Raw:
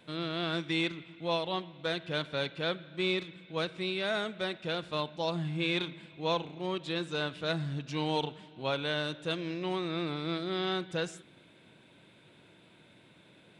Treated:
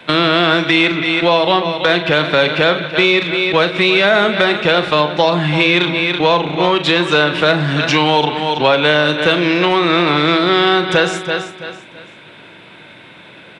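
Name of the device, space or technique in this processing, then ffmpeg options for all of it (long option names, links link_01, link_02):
mastering chain: -filter_complex "[0:a]agate=range=-10dB:threshold=-45dB:ratio=16:detection=peak,bass=frequency=250:gain=-1,treble=frequency=4000:gain=-15,equalizer=frequency=5600:width_type=o:width=0.23:gain=3,asplit=2[link_01][link_02];[link_02]adelay=40,volume=-11dB[link_03];[link_01][link_03]amix=inputs=2:normalize=0,aecho=1:1:331|662|993:0.178|0.0551|0.0171,acrossover=split=140|660[link_04][link_05][link_06];[link_04]acompressor=threshold=-57dB:ratio=4[link_07];[link_05]acompressor=threshold=-38dB:ratio=4[link_08];[link_06]acompressor=threshold=-43dB:ratio=4[link_09];[link_07][link_08][link_09]amix=inputs=3:normalize=0,acompressor=threshold=-43dB:ratio=1.5,asoftclip=type=tanh:threshold=-29dB,tiltshelf=frequency=690:gain=-5.5,alimiter=level_in=31dB:limit=-1dB:release=50:level=0:latency=1,volume=-1dB"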